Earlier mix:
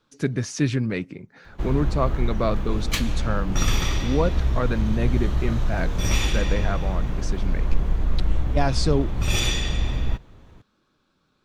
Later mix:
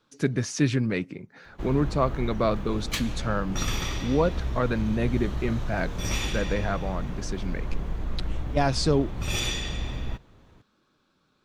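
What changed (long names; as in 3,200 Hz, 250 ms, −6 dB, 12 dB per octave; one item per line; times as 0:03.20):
background −4.0 dB
master: add low-shelf EQ 79 Hz −6 dB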